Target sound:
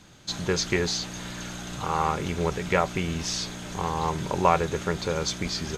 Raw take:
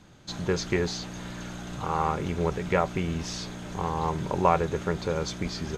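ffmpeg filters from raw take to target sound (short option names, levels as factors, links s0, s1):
-af "highshelf=f=2000:g=8"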